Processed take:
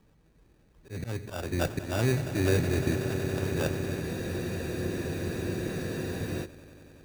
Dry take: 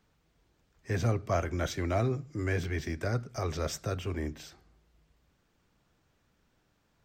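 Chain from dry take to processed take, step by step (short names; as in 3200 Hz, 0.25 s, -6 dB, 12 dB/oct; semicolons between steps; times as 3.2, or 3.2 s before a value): Wiener smoothing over 25 samples; LPF 1800 Hz 12 dB/oct; bell 75 Hz -5 dB 0.46 oct; notch 690 Hz, Q 12; auto swell 0.37 s; in parallel at -2.5 dB: compressor, threshold -42 dBFS, peak gain reduction 14 dB; on the sum: sample-and-hold 21×; on a send: swelling echo 93 ms, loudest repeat 8, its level -14 dB; on the sum: spectral freeze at 4.05, 2.40 s; gain +5 dB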